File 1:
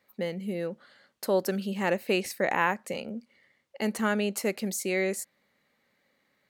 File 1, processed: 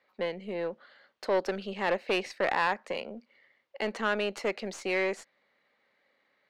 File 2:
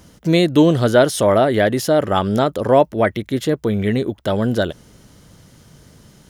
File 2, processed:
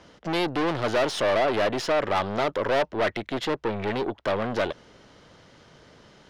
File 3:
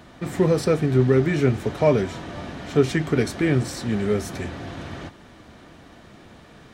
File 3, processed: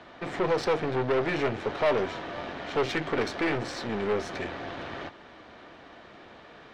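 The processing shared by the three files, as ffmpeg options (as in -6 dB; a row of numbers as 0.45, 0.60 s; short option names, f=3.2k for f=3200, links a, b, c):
-filter_complex "[0:a]aeval=exprs='(tanh(14.1*val(0)+0.55)-tanh(0.55))/14.1':c=same,acrossover=split=340 5600:gain=0.224 1 0.2[a][b][c];[a][b][c]amix=inputs=3:normalize=0,adynamicsmooth=sensitivity=5:basefreq=6.6k,volume=4dB"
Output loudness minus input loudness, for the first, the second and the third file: -2.0, -9.0, -7.5 LU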